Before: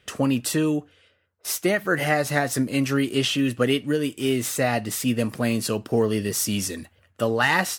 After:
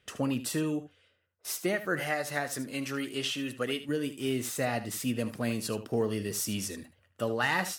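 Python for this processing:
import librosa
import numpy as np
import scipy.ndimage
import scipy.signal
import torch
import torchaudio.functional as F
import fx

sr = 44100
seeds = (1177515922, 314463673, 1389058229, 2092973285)

y = fx.low_shelf(x, sr, hz=320.0, db=-9.0, at=(2.0, 3.89))
y = y + 10.0 ** (-13.0 / 20.0) * np.pad(y, (int(76 * sr / 1000.0), 0))[:len(y)]
y = y * librosa.db_to_amplitude(-8.0)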